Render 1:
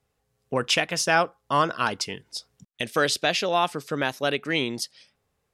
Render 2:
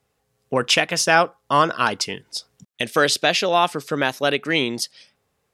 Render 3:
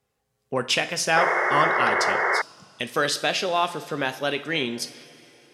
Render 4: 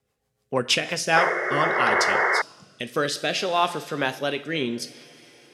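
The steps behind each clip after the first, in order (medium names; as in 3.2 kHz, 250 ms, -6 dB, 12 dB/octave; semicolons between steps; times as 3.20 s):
bass shelf 65 Hz -11 dB; trim +5 dB
two-slope reverb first 0.45 s, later 3.4 s, from -15 dB, DRR 8.5 dB; painted sound noise, 1.16–2.42 s, 340–2200 Hz -17 dBFS; trim -5.5 dB
rotary cabinet horn 6.7 Hz, later 0.6 Hz, at 0.56 s; trim +2.5 dB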